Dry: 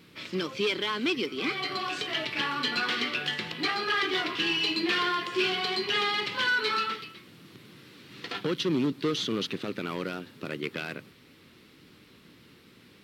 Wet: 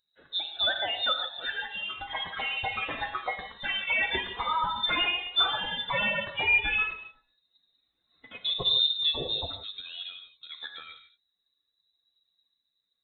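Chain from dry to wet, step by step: expander on every frequency bin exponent 2; frequency inversion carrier 3.9 kHz; gated-style reverb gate 190 ms flat, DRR 5.5 dB; trim +3.5 dB

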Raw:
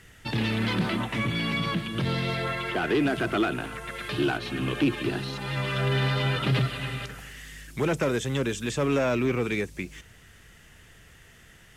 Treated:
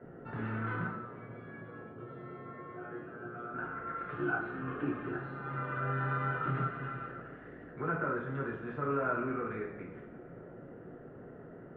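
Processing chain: 0.87–3.54 s: feedback comb 120 Hz, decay 0.39 s, harmonics all, mix 100%; band noise 100–550 Hz -39 dBFS; four-pole ladder low-pass 1.5 kHz, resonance 70%; reverberation, pre-delay 3 ms, DRR -4 dB; trim -5.5 dB

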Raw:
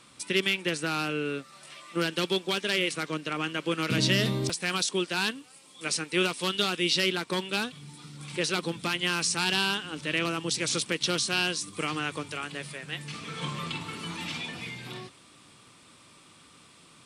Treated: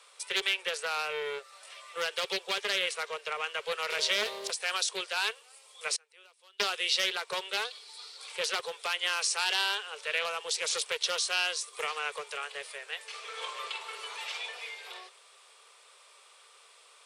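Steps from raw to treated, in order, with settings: steep high-pass 410 Hz 96 dB/octave; 5.96–6.60 s: inverted gate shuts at -29 dBFS, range -27 dB; 7.65–8.28 s: peaking EQ 4.4 kHz +13.5 dB 0.49 oct; loudspeaker Doppler distortion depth 0.2 ms; trim -1.5 dB

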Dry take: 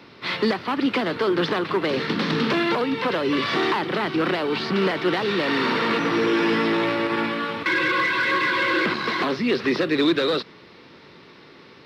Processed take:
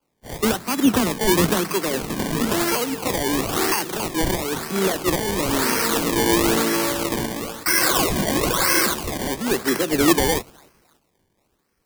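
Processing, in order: 0.58–1.73 s: peaking EQ 200 Hz +9 dB 0.62 oct; feedback echo behind a high-pass 569 ms, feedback 55%, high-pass 4.8 kHz, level -8 dB; decimation with a swept rate 23×, swing 100% 1 Hz; treble shelf 4.7 kHz +9.5 dB; three bands expanded up and down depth 100%

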